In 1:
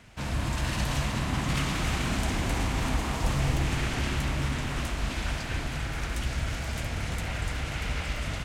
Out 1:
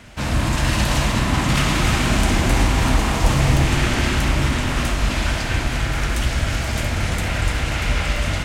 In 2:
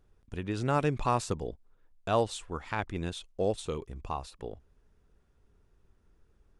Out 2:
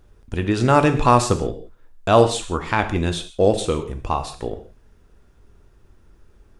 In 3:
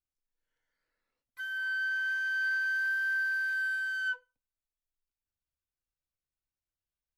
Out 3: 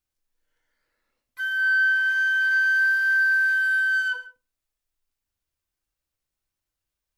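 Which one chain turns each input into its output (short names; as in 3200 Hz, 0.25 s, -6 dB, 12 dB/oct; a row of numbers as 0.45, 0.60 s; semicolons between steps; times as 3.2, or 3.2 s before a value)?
non-linear reverb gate 0.2 s falling, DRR 7 dB; match loudness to -20 LUFS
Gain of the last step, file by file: +9.5, +12.5, +7.5 dB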